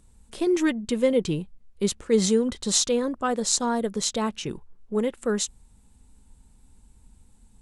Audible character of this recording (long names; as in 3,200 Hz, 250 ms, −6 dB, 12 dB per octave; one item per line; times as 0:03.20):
background noise floor −57 dBFS
spectral slope −3.5 dB per octave